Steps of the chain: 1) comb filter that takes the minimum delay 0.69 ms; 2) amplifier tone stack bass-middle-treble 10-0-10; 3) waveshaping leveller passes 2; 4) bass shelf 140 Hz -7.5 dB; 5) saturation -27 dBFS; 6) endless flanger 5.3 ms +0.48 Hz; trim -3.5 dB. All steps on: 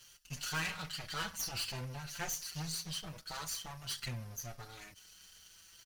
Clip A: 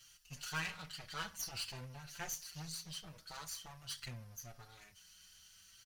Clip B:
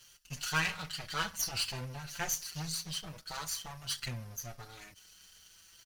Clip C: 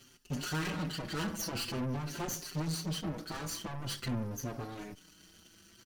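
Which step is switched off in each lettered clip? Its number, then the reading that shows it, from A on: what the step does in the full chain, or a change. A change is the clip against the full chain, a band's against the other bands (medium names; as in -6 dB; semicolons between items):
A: 3, crest factor change +3.0 dB; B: 5, distortion -11 dB; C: 2, 250 Hz band +11.0 dB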